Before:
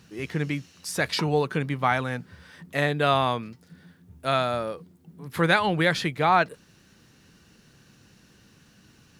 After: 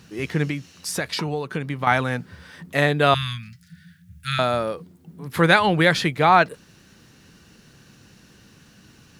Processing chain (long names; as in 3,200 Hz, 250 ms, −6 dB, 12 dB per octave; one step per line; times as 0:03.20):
0:00.45–0:01.87: downward compressor 6 to 1, threshold −28 dBFS, peak gain reduction 10.5 dB
0:03.14–0:04.39: elliptic band-stop filter 170–1,600 Hz, stop band 50 dB
level +5 dB